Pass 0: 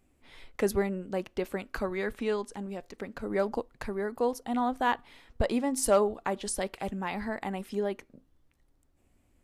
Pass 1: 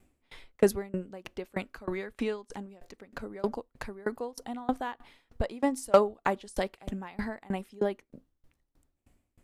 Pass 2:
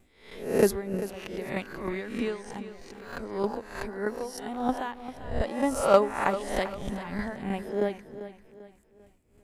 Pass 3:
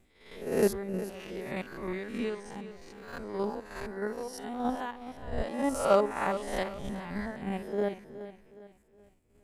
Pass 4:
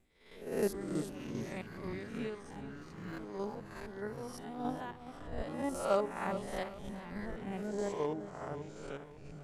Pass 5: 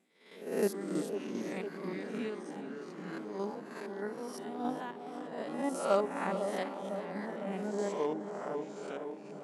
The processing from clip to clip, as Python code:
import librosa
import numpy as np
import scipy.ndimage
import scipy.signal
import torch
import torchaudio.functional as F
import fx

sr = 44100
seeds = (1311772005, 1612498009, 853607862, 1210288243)

y1 = fx.tremolo_decay(x, sr, direction='decaying', hz=3.2, depth_db=27)
y1 = y1 * librosa.db_to_amplitude(6.5)
y2 = fx.spec_swells(y1, sr, rise_s=0.57)
y2 = fx.echo_feedback(y2, sr, ms=394, feedback_pct=38, wet_db=-13.0)
y3 = fx.spec_steps(y2, sr, hold_ms=50)
y3 = y3 * librosa.db_to_amplitude(-2.0)
y4 = fx.echo_pitch(y3, sr, ms=116, semitones=-5, count=3, db_per_echo=-6.0)
y4 = y4 * librosa.db_to_amplitude(-7.0)
y5 = fx.brickwall_bandpass(y4, sr, low_hz=160.0, high_hz=12000.0)
y5 = fx.echo_wet_bandpass(y5, sr, ms=503, feedback_pct=69, hz=490.0, wet_db=-8.0)
y5 = y5 * librosa.db_to_amplitude(2.0)